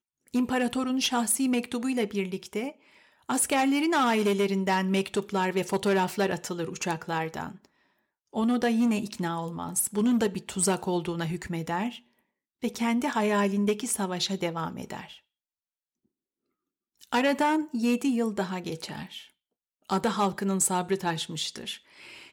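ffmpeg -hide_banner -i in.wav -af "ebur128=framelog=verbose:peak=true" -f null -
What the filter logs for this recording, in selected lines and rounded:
Integrated loudness:
  I:         -27.6 LUFS
  Threshold: -38.2 LUFS
Loudness range:
  LRA:         3.9 LU
  Threshold: -48.6 LUFS
  LRA low:   -30.3 LUFS
  LRA high:  -26.4 LUFS
True peak:
  Peak:      -13.2 dBFS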